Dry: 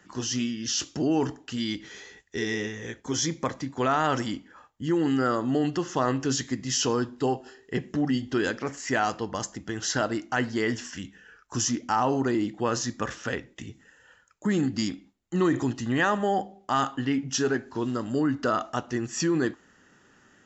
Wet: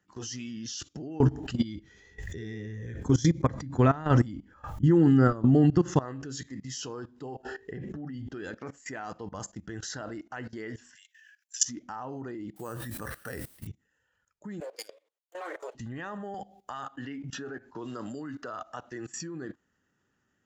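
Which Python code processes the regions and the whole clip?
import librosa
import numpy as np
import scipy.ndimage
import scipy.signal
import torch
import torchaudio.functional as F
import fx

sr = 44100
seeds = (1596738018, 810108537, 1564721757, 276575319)

y = fx.chain(x, sr, fx.low_shelf(hz=260.0, db=12.0),
    fx.pre_swell(db_per_s=80.0), at=(1.2, 6.0))
y = fx.chain(y, sr, fx.high_shelf(hz=4200.0, db=-8.0),
    fx.env_flatten(amount_pct=50), at=(7.43, 8.29))
y = fx.chain(y, sr, fx.steep_highpass(hz=1600.0, slope=96),
    fx.tilt_eq(slope=3.0), at=(10.95, 11.65))
y = fx.chain(y, sr, fx.resample_bad(factor=6, down='filtered', up='hold'),
    fx.quant_dither(seeds[0], bits=8, dither='triangular'),
    fx.sustainer(db_per_s=98.0), at=(12.56, 13.67))
y = fx.chain(y, sr, fx.lower_of_two(delay_ms=9.3),
    fx.ellip_highpass(hz=430.0, order=4, stop_db=70), at=(14.6, 15.75))
y = fx.chain(y, sr, fx.low_shelf(hz=400.0, db=-6.0),
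    fx.band_squash(depth_pct=100), at=(16.34, 19.13))
y = fx.noise_reduce_blind(y, sr, reduce_db=7)
y = fx.peak_eq(y, sr, hz=83.0, db=7.5, octaves=2.2)
y = fx.level_steps(y, sr, step_db=19)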